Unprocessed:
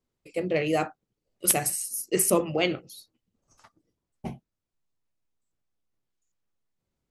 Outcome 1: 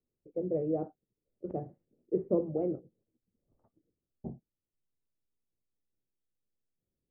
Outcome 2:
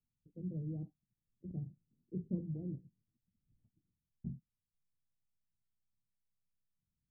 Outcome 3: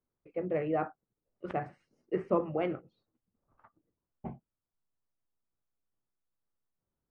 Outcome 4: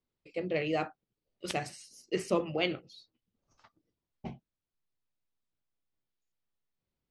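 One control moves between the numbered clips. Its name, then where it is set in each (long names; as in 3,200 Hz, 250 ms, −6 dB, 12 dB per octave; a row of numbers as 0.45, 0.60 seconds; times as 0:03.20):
transistor ladder low-pass, frequency: 630, 230, 1,800, 5,600 Hertz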